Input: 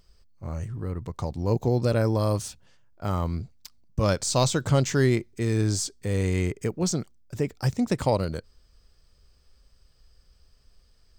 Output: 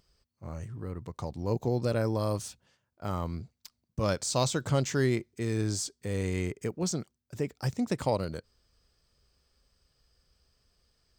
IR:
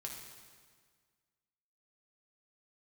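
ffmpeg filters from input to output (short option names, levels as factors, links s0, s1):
-af "highpass=f=92:p=1,volume=0.596"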